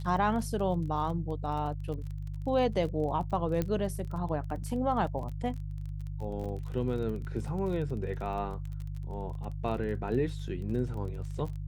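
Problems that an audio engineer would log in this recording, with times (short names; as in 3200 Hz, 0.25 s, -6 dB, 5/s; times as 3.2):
crackle 28/s -38 dBFS
hum 50 Hz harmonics 3 -37 dBFS
3.62 pop -18 dBFS
6.44 gap 3.3 ms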